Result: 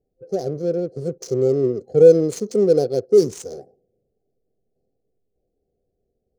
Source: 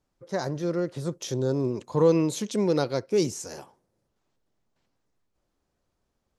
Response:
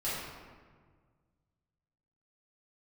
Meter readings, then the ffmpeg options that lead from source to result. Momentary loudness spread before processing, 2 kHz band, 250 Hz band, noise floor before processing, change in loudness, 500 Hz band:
12 LU, can't be measured, +3.0 dB, −78 dBFS, +8.0 dB, +10.0 dB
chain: -af "afftfilt=real='re*(1-between(b*sr/4096,800,4100))':imag='im*(1-between(b*sr/4096,800,4100))':win_size=4096:overlap=0.75,superequalizer=7b=2.82:10b=0.501:15b=1.58:16b=2.82,adynamicsmooth=sensitivity=8:basefreq=1800,volume=2dB"

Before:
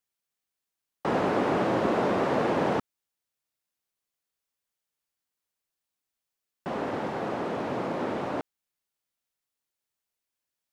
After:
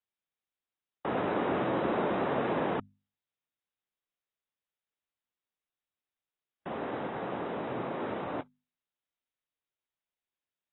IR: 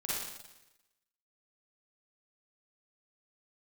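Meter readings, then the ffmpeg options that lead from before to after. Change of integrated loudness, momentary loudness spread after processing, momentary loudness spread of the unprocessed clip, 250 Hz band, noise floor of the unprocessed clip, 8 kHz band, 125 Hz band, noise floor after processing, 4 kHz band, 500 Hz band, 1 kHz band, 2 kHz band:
−4.5 dB, 10 LU, 9 LU, −4.5 dB, below −85 dBFS, can't be measured, −5.0 dB, below −85 dBFS, −5.0 dB, −4.5 dB, −4.5 dB, −4.0 dB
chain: -af "bandreject=frequency=50:width_type=h:width=6,bandreject=frequency=100:width_type=h:width=6,bandreject=frequency=150:width_type=h:width=6,bandreject=frequency=200:width_type=h:width=6,bandreject=frequency=250:width_type=h:width=6,volume=-5dB" -ar 22050 -c:a aac -b:a 16k

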